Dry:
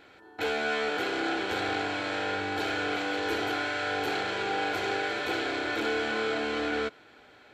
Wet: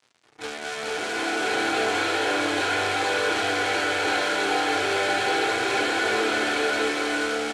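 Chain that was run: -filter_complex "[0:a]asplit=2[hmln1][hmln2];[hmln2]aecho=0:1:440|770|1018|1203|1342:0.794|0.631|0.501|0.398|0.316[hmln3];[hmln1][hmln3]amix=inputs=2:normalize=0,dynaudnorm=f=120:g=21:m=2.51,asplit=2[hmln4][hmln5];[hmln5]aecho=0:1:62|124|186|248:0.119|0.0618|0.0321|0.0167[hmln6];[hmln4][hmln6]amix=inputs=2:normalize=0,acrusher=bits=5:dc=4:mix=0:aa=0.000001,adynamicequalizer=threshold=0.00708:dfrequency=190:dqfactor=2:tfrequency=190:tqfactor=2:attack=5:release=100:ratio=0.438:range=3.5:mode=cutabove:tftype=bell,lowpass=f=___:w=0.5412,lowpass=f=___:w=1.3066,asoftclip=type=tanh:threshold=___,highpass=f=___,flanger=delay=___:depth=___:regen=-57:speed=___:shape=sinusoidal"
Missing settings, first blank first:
9.2k, 9.2k, 0.355, 120, 7.8, 7.2, 0.34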